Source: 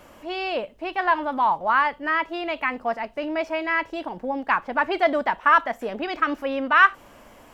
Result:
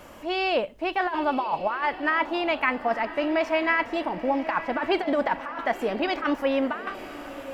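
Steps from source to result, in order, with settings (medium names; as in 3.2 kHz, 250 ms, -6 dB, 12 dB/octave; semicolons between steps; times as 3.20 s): compressor with a negative ratio -23 dBFS, ratio -0.5; echo that smears into a reverb 986 ms, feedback 43%, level -13 dB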